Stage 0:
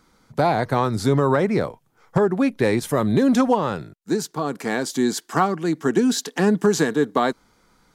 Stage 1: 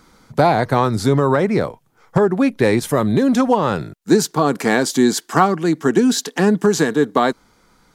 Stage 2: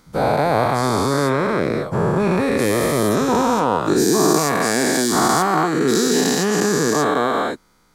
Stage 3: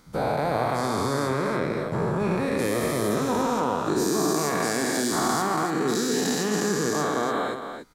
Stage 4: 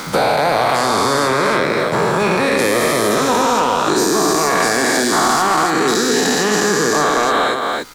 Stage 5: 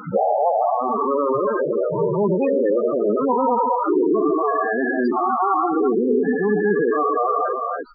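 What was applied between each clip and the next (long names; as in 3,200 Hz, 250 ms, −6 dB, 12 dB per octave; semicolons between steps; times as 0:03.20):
speech leveller within 5 dB 0.5 s; level +4.5 dB
every bin's largest magnitude spread in time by 480 ms; high-shelf EQ 9,000 Hz +6 dB; level −9.5 dB
downward compressor 1.5 to 1, threshold −29 dBFS, peak gain reduction 6.5 dB; on a send: loudspeakers that aren't time-aligned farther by 18 metres −12 dB, 97 metres −8 dB; on the sum: level −2.5 dB
mid-hump overdrive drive 13 dB, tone 6,300 Hz, clips at −9.5 dBFS; surface crackle 460 per second −46 dBFS; multiband upward and downward compressor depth 70%; level +6 dB
spectral peaks only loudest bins 8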